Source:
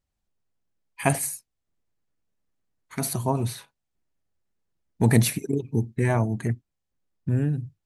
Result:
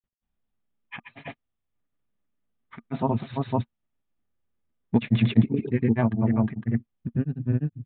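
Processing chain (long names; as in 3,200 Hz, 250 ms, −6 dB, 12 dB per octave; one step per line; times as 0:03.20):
downsampling to 8,000 Hz
granular cloud, grains 20 per second, spray 290 ms, pitch spread up and down by 0 semitones
hollow resonant body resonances 230/1,200 Hz, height 8 dB, ringing for 65 ms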